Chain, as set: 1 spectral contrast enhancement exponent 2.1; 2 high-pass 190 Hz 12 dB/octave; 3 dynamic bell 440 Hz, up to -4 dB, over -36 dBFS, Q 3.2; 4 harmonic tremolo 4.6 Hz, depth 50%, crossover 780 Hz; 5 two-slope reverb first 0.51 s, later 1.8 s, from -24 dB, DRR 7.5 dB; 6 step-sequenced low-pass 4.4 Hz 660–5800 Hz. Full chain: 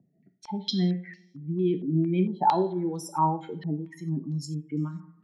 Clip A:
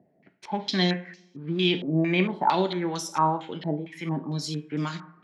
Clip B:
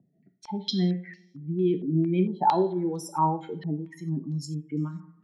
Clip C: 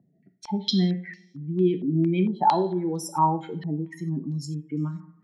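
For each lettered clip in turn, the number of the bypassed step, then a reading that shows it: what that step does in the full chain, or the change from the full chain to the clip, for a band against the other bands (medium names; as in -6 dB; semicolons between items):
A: 1, 2 kHz band +14.0 dB; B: 3, 500 Hz band +1.5 dB; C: 4, 2 kHz band +2.0 dB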